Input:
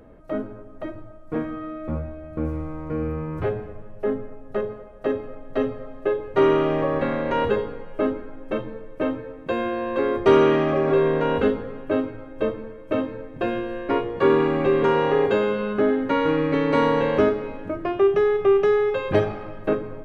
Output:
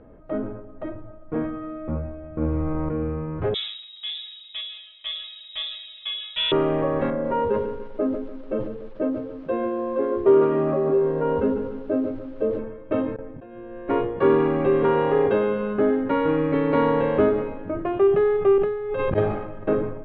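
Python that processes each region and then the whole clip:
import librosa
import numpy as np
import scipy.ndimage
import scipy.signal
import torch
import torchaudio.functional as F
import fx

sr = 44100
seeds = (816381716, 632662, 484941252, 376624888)

y = fx.chain(x, sr, fx.transient(attack_db=11, sustain_db=2),
    fx.env_flatten(amount_pct=70), at=(2.41, 2.89))
y = fx.chain(y, sr, fx.transient(attack_db=-1, sustain_db=4),
    fx.freq_invert(carrier_hz=3800), at=(3.54, 6.52))
y = fx.chain(y, sr, fx.spec_expand(power=1.5),
    fx.hum_notches(base_hz=60, count=7),
    fx.echo_crushed(ms=146, feedback_pct=55, bits=7, wet_db=-10.5), at=(7.1, 12.59))
y = fx.chain(y, sr, fx.gate_hold(open_db=-27.0, close_db=-35.0, hold_ms=71.0, range_db=-21, attack_ms=1.4, release_ms=100.0),
    fx.lowpass(hz=2500.0, slope=6),
    fx.auto_swell(attack_ms=695.0), at=(13.16, 13.88))
y = fx.chain(y, sr, fx.low_shelf(hz=200.0, db=6.0),
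    fx.auto_swell(attack_ms=115.0),
    fx.over_compress(threshold_db=-27.0, ratio=-1.0), at=(18.58, 19.18))
y = scipy.signal.sosfilt(scipy.signal.butter(4, 3300.0, 'lowpass', fs=sr, output='sos'), y)
y = fx.peak_eq(y, sr, hz=2600.0, db=-5.5, octaves=1.8)
y = fx.sustainer(y, sr, db_per_s=58.0)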